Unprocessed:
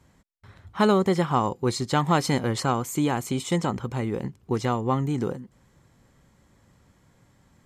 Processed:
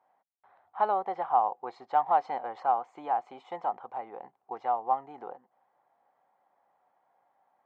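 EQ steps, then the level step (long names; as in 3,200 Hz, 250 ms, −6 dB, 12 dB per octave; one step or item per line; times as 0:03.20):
high-pass with resonance 760 Hz, resonance Q 6.9
head-to-tape spacing loss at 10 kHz 41 dB
high-shelf EQ 4,200 Hz −6 dB
−7.0 dB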